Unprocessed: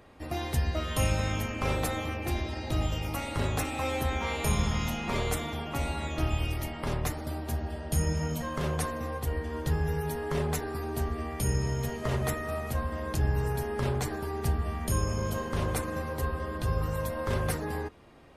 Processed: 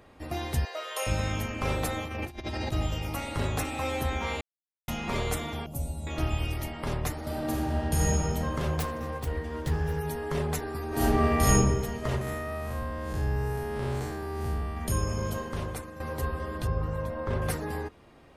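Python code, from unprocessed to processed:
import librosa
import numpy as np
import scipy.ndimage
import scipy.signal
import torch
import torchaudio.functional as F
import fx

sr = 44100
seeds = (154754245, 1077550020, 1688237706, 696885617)

y = fx.ellip_highpass(x, sr, hz=450.0, order=4, stop_db=80, at=(0.65, 1.07))
y = fx.over_compress(y, sr, threshold_db=-36.0, ratio=-0.5, at=(2.04, 2.71), fade=0.02)
y = fx.curve_eq(y, sr, hz=(170.0, 390.0, 570.0, 1700.0, 11000.0), db=(0, -11, -5, -29, 6), at=(5.66, 6.07))
y = fx.reverb_throw(y, sr, start_s=7.18, length_s=0.91, rt60_s=2.7, drr_db=-4.0)
y = fx.self_delay(y, sr, depth_ms=0.19, at=(8.77, 9.99))
y = fx.reverb_throw(y, sr, start_s=10.88, length_s=0.66, rt60_s=1.1, drr_db=-10.0)
y = fx.spec_blur(y, sr, span_ms=164.0, at=(12.21, 14.77))
y = fx.lowpass(y, sr, hz=1600.0, slope=6, at=(16.67, 17.42))
y = fx.edit(y, sr, fx.silence(start_s=4.41, length_s=0.47),
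    fx.fade_out_to(start_s=15.28, length_s=0.72, floor_db=-12.0), tone=tone)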